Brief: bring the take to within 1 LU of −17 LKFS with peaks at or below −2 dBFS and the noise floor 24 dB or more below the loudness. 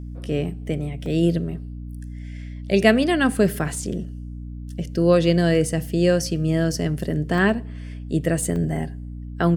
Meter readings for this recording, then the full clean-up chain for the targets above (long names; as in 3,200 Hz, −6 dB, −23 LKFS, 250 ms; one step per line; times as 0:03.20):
number of dropouts 3; longest dropout 1.8 ms; mains hum 60 Hz; hum harmonics up to 300 Hz; level of the hum −31 dBFS; integrated loudness −22.0 LKFS; sample peak −2.5 dBFS; target loudness −17.0 LKFS
→ repair the gap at 0:01.06/0:07.38/0:08.56, 1.8 ms
hum removal 60 Hz, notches 5
level +5 dB
brickwall limiter −2 dBFS